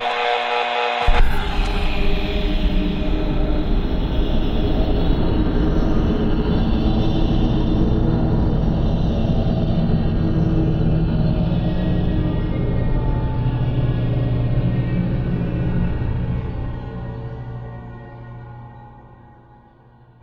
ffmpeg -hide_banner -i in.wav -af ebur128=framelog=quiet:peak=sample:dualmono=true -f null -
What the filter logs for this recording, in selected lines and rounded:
Integrated loudness:
  I:         -17.8 LUFS
  Threshold: -28.3 LUFS
Loudness range:
  LRA:         7.2 LU
  Threshold: -38.1 LUFS
  LRA low:   -23.7 LUFS
  LRA high:  -16.5 LUFS
Sample peak:
  Peak:       -2.5 dBFS